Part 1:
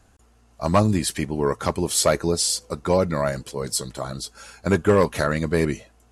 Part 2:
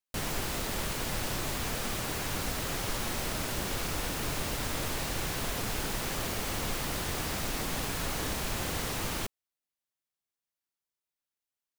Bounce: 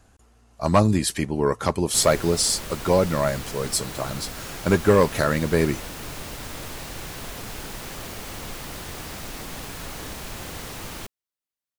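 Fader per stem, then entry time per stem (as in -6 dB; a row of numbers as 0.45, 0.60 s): +0.5, -2.0 dB; 0.00, 1.80 s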